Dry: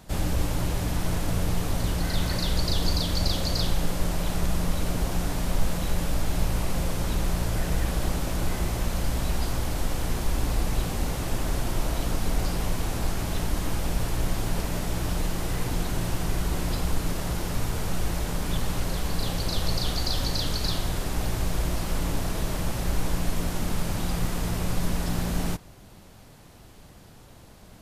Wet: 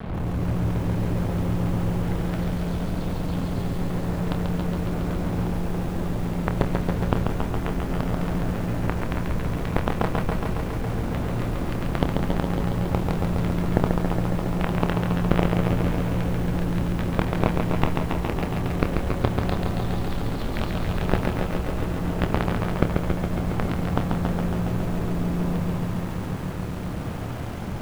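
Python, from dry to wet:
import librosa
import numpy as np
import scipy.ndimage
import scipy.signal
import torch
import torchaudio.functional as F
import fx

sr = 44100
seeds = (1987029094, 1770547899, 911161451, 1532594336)

p1 = fx.peak_eq(x, sr, hz=150.0, db=12.0, octaves=2.7)
p2 = fx.hum_notches(p1, sr, base_hz=50, count=8)
p3 = fx.over_compress(p2, sr, threshold_db=-23.0, ratio=-1.0)
p4 = fx.quant_companded(p3, sr, bits=2)
p5 = fx.air_absorb(p4, sr, metres=490.0)
p6 = fx.doubler(p5, sr, ms=27.0, db=-9.5)
p7 = p6 + fx.echo_feedback(p6, sr, ms=287, feedback_pct=30, wet_db=-9.5, dry=0)
p8 = fx.echo_crushed(p7, sr, ms=138, feedback_pct=80, bits=7, wet_db=-4.5)
y = p8 * 10.0 ** (-2.0 / 20.0)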